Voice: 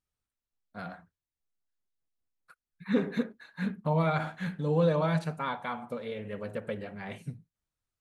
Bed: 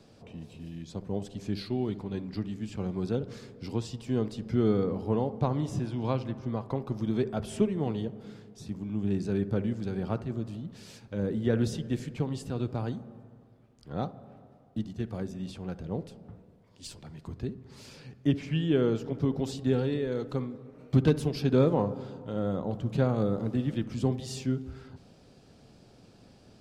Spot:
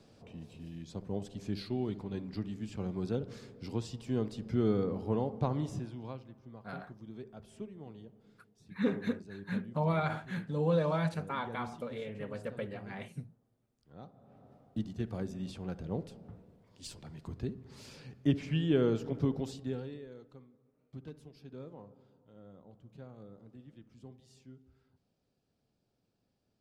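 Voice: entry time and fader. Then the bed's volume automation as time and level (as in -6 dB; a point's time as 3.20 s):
5.90 s, -3.5 dB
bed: 5.64 s -4 dB
6.29 s -18 dB
14.02 s -18 dB
14.51 s -2.5 dB
19.25 s -2.5 dB
20.44 s -24 dB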